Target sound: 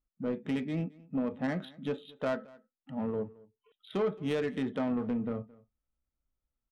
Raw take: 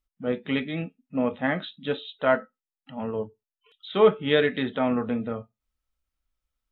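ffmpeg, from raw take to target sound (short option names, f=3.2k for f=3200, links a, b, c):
-filter_complex "[0:a]equalizer=f=190:w=0.39:g=7.5,acompressor=threshold=-23dB:ratio=2.5,asoftclip=type=tanh:threshold=-17.5dB,adynamicsmooth=sensitivity=4:basefreq=1.9k,asplit=2[a][b];[b]aecho=0:1:220:0.0708[c];[a][c]amix=inputs=2:normalize=0,volume=-5.5dB"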